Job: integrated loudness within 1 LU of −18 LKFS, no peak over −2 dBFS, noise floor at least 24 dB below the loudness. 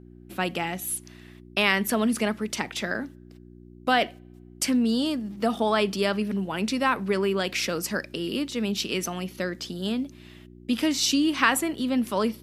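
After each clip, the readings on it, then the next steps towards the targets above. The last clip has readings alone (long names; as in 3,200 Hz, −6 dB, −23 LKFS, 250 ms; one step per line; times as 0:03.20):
mains hum 60 Hz; hum harmonics up to 360 Hz; level of the hum −47 dBFS; integrated loudness −26.0 LKFS; sample peak −5.5 dBFS; target loudness −18.0 LKFS
→ hum removal 60 Hz, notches 6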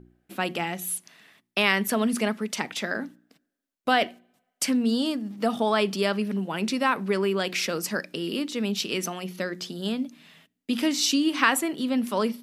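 mains hum none found; integrated loudness −26.5 LKFS; sample peak −6.0 dBFS; target loudness −18.0 LKFS
→ level +8.5 dB
brickwall limiter −2 dBFS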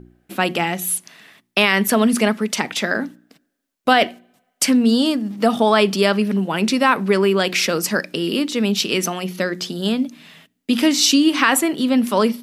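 integrated loudness −18.5 LKFS; sample peak −2.0 dBFS; background noise floor −72 dBFS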